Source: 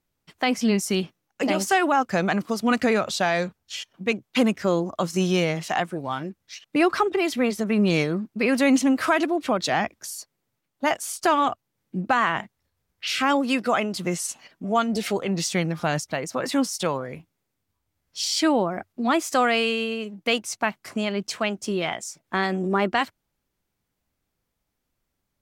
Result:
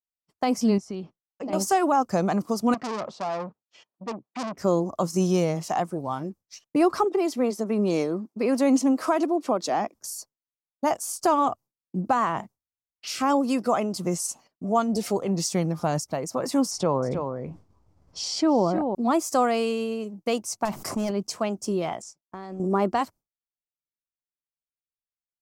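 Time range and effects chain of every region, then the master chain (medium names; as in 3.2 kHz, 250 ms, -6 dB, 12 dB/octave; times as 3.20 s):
0.78–1.53 s: compression 2:1, threshold -36 dBFS + low-pass 3.7 kHz
2.74–4.58 s: band-pass 170–2100 Hz + transformer saturation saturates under 3 kHz
7.04–9.95 s: Chebyshev high-pass 280 Hz + treble shelf 9.8 kHz -5.5 dB
16.71–18.95 s: tape spacing loss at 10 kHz 22 dB + delay 314 ms -12 dB + level flattener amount 50%
20.65–21.11 s: band-stop 4.4 kHz, Q 28 + overload inside the chain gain 22.5 dB + level flattener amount 70%
22.02–22.60 s: companding laws mixed up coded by A + distance through air 67 m + compression 3:1, threshold -35 dBFS
whole clip: expander -38 dBFS; high-order bell 2.4 kHz -11.5 dB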